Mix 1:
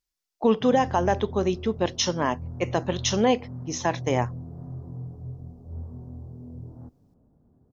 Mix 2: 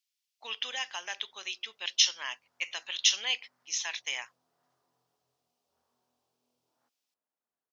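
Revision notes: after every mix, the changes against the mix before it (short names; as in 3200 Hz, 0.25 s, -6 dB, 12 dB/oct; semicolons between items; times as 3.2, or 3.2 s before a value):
master: add resonant high-pass 2700 Hz, resonance Q 1.9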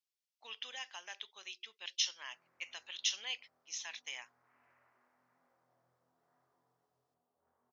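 speech -10.0 dB; background: entry +1.70 s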